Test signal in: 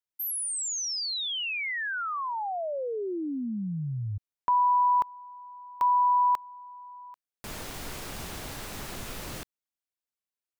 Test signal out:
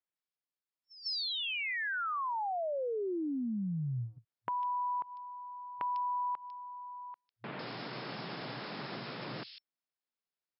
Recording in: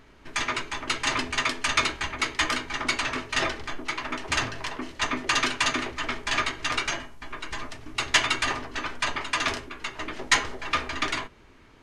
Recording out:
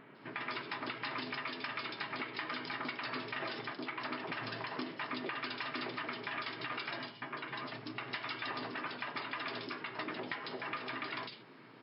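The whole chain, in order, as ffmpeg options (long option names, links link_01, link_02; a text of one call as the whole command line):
ffmpeg -i in.wav -filter_complex "[0:a]acompressor=threshold=-32dB:ratio=12:attack=2.4:release=251:knee=1:detection=peak,afftfilt=real='re*between(b*sr/4096,110,5400)':imag='im*between(b*sr/4096,110,5400)':win_size=4096:overlap=0.75,acrossover=split=3100[link_01][link_02];[link_02]adelay=150[link_03];[link_01][link_03]amix=inputs=2:normalize=0" out.wav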